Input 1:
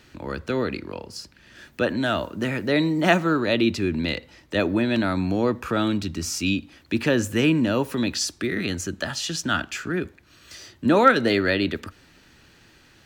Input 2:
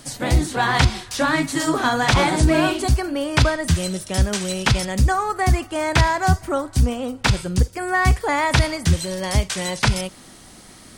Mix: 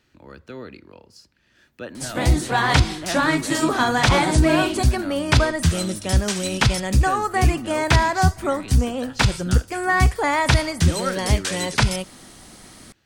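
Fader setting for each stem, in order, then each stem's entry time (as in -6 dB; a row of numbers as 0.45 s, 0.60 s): -11.5 dB, 0.0 dB; 0.00 s, 1.95 s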